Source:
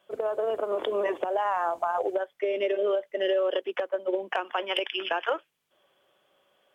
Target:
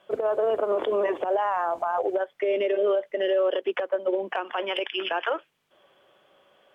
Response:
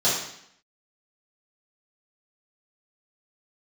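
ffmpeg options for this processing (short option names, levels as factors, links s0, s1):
-af "alimiter=limit=0.0631:level=0:latency=1:release=130,aemphasis=mode=reproduction:type=cd,volume=2.37"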